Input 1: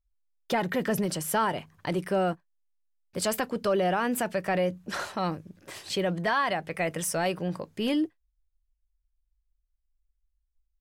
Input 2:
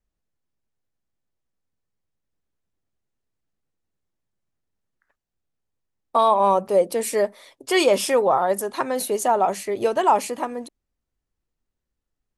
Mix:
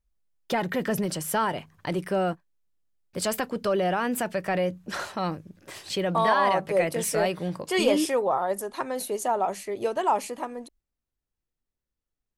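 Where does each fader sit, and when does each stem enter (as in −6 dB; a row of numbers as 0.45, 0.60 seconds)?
+0.5, −6.0 decibels; 0.00, 0.00 seconds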